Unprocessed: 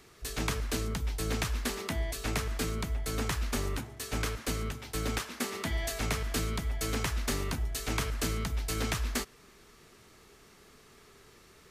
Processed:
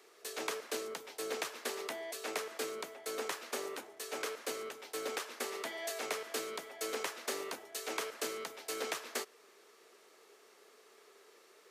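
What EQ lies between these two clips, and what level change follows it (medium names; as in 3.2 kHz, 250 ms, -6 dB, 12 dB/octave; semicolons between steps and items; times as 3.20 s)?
ladder high-pass 370 Hz, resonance 40%; +3.5 dB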